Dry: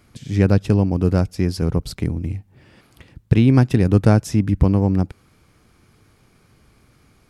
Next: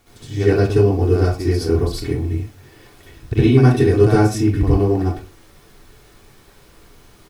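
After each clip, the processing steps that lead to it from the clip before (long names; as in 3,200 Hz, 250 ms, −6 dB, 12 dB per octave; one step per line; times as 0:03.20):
comb filter 2.7 ms, depth 79%
background noise pink −52 dBFS
convolution reverb RT60 0.35 s, pre-delay 59 ms, DRR −9 dB
level −8.5 dB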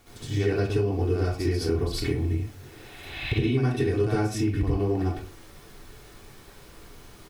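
healed spectral selection 0:02.61–0:03.40, 580–5,100 Hz both
dynamic equaliser 2,700 Hz, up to +5 dB, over −43 dBFS, Q 1.1
downward compressor 4 to 1, threshold −23 dBFS, peak gain reduction 13.5 dB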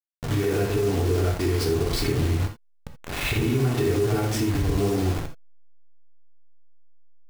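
hold until the input has moved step −31.5 dBFS
brickwall limiter −23 dBFS, peak gain reduction 10.5 dB
reverb whose tail is shaped and stops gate 100 ms flat, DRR 5.5 dB
level +6.5 dB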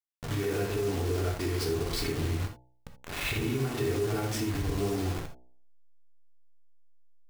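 low-shelf EQ 450 Hz −3 dB
hum removal 62.07 Hz, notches 15
level −4.5 dB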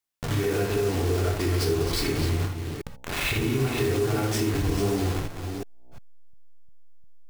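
delay that plays each chunk backwards 352 ms, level −9 dB
in parallel at +0.5 dB: downward compressor, threshold −39 dBFS, peak gain reduction 13.5 dB
on the sum: level +2.5 dB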